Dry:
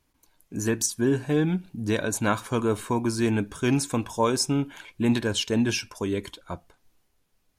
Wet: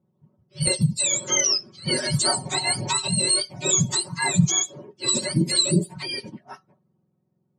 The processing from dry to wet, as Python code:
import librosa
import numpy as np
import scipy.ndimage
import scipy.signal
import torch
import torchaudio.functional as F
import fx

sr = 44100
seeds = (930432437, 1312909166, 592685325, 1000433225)

y = fx.octave_mirror(x, sr, pivot_hz=970.0)
y = fx.env_lowpass(y, sr, base_hz=820.0, full_db=-22.0)
y = scipy.signal.sosfilt(scipy.signal.butter(2, 110.0, 'highpass', fs=sr, output='sos'), y)
y = fx.band_shelf(y, sr, hz=7200.0, db=13.0, octaves=1.7)
y = y + 0.84 * np.pad(y, (int(5.4 * sr / 1000.0), 0))[:len(y)]
y = fx.dynamic_eq(y, sr, hz=2800.0, q=1.2, threshold_db=-35.0, ratio=4.0, max_db=-7)
y = fx.band_squash(y, sr, depth_pct=70, at=(0.67, 3.08))